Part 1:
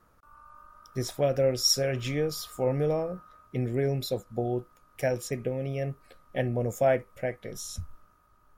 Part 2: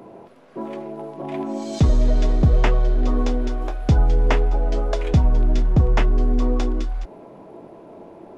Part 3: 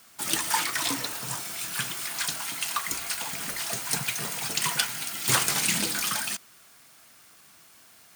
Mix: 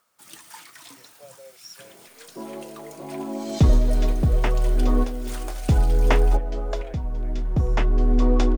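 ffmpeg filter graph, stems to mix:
-filter_complex "[0:a]highpass=f=480:w=0.5412,highpass=f=480:w=1.3066,acompressor=mode=upward:threshold=0.00708:ratio=2.5,volume=0.1,asplit=2[s0][s1];[1:a]adelay=1800,volume=1.41[s2];[2:a]volume=0.133[s3];[s1]apad=whole_len=448579[s4];[s2][s4]sidechaincompress=threshold=0.00178:ratio=8:attack=21:release=1310[s5];[s0][s5][s3]amix=inputs=3:normalize=0"

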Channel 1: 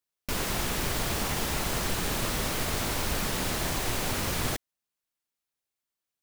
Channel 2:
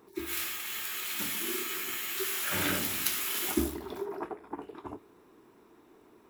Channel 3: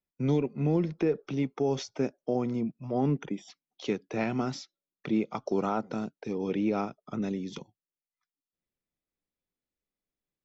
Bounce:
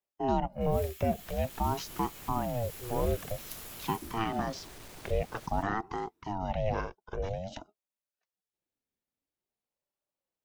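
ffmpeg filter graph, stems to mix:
-filter_complex "[0:a]asoftclip=type=tanh:threshold=0.0335,adelay=900,volume=0.158,asplit=2[s0][s1];[s1]volume=0.531[s2];[1:a]equalizer=f=900:w=0.35:g=-10,adelay=450,volume=0.224[s3];[2:a]aeval=exprs='val(0)*sin(2*PI*410*n/s+410*0.45/0.5*sin(2*PI*0.5*n/s))':c=same,volume=1.06,asplit=2[s4][s5];[s5]apad=whole_len=314428[s6];[s0][s6]sidechaincompress=threshold=0.0178:ratio=8:attack=16:release=253[s7];[s2]aecho=0:1:166:1[s8];[s7][s3][s4][s8]amix=inputs=4:normalize=0"

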